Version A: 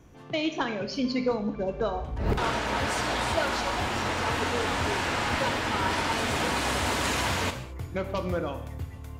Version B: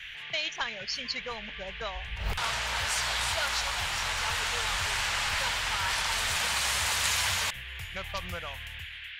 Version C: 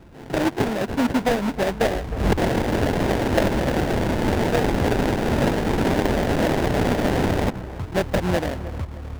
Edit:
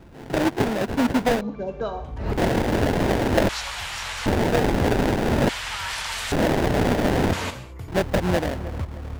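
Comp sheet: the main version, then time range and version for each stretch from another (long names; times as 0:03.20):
C
0:01.41–0:02.36: punch in from A
0:03.49–0:04.26: punch in from B
0:05.49–0:06.32: punch in from B
0:07.33–0:07.88: punch in from A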